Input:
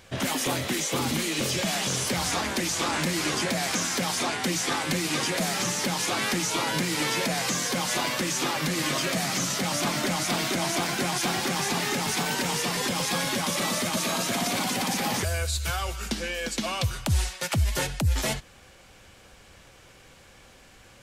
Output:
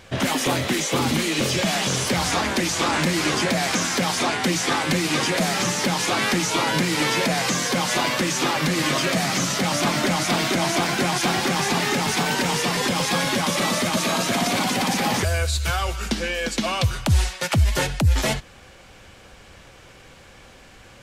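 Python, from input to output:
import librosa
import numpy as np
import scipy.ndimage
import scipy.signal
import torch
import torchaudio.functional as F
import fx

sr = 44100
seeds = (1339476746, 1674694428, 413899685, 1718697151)

y = fx.high_shelf(x, sr, hz=6700.0, db=-7.0)
y = F.gain(torch.from_numpy(y), 6.0).numpy()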